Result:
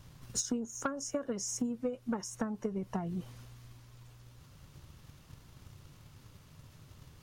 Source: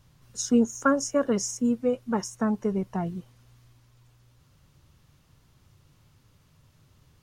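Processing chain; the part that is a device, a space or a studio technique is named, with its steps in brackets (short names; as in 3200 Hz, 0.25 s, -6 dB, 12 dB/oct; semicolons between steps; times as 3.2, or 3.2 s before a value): drum-bus smash (transient shaper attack +8 dB, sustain +4 dB; compressor 16:1, threshold -33 dBFS, peak gain reduction 24 dB; soft clip -25 dBFS, distortion -20 dB); gain +3 dB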